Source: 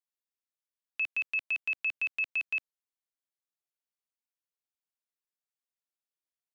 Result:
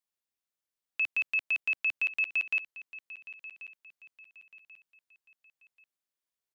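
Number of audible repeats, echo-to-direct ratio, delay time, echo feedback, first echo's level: 3, -15.5 dB, 1.086 s, 36%, -16.0 dB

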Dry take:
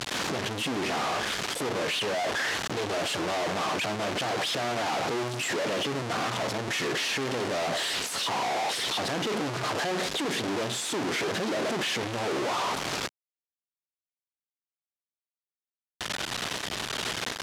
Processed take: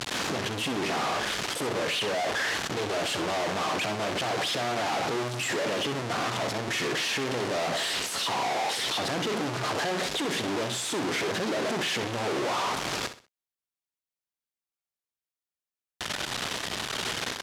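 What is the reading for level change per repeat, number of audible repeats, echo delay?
-10.5 dB, 3, 64 ms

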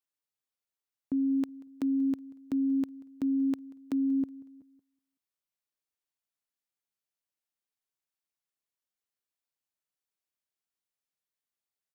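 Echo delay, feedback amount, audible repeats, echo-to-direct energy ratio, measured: 0.185 s, 50%, 2, -22.0 dB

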